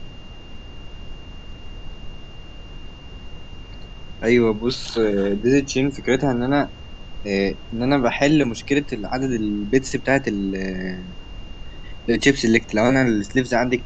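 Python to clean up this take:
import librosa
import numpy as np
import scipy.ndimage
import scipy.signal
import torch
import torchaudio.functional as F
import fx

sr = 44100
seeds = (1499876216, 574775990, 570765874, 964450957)

y = fx.notch(x, sr, hz=2800.0, q=30.0)
y = fx.noise_reduce(y, sr, print_start_s=2.2, print_end_s=2.7, reduce_db=28.0)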